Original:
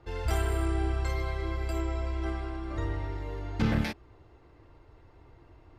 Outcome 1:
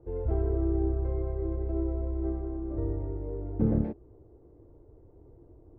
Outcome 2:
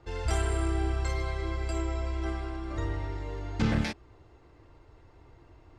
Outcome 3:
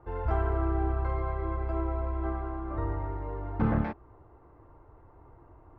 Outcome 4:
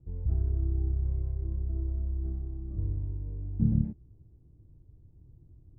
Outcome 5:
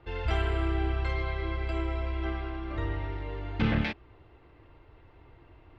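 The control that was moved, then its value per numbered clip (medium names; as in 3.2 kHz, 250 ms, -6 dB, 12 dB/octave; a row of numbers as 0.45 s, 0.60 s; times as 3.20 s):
resonant low-pass, frequency: 450 Hz, 7.8 kHz, 1.1 kHz, 170 Hz, 3 kHz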